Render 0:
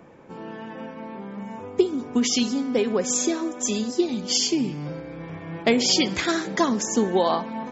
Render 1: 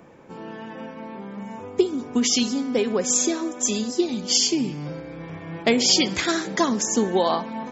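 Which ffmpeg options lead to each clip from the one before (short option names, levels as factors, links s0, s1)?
-af "highshelf=f=4600:g=5"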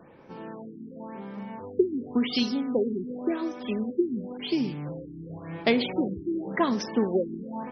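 -af "afftfilt=real='re*lt(b*sr/1024,400*pow(6200/400,0.5+0.5*sin(2*PI*0.92*pts/sr)))':imag='im*lt(b*sr/1024,400*pow(6200/400,0.5+0.5*sin(2*PI*0.92*pts/sr)))':win_size=1024:overlap=0.75,volume=0.708"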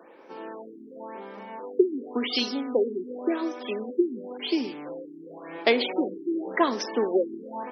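-af "highpass=f=300:w=0.5412,highpass=f=300:w=1.3066,volume=1.41"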